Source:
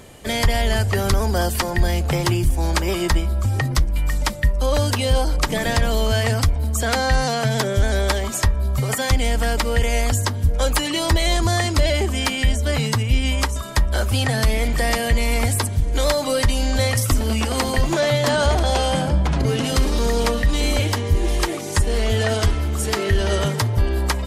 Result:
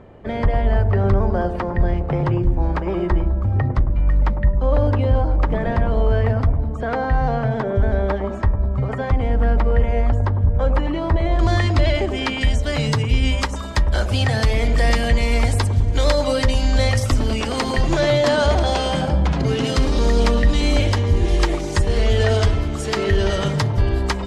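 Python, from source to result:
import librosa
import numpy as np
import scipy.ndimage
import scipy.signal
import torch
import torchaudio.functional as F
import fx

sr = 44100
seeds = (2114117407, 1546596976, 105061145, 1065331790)

y = fx.lowpass(x, sr, hz=fx.steps((0.0, 1300.0), (11.39, 3500.0), (12.41, 6000.0)), slope=12)
y = fx.echo_wet_lowpass(y, sr, ms=102, feedback_pct=46, hz=700.0, wet_db=-5)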